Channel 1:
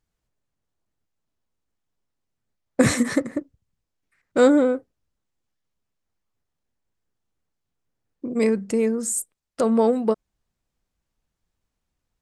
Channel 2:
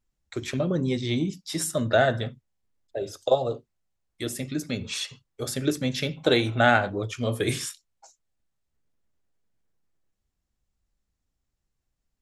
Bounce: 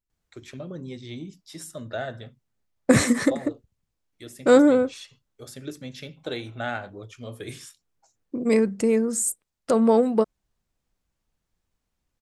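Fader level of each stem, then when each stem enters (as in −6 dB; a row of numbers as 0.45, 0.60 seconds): +0.5, −11.0 decibels; 0.10, 0.00 seconds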